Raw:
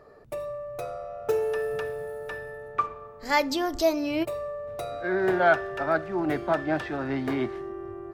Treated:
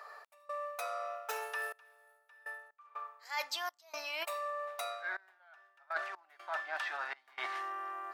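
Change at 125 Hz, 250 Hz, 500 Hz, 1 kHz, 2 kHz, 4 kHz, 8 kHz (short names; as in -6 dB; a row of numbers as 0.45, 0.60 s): under -40 dB, -36.5 dB, -18.5 dB, -9.5 dB, -8.0 dB, -5.5 dB, -5.0 dB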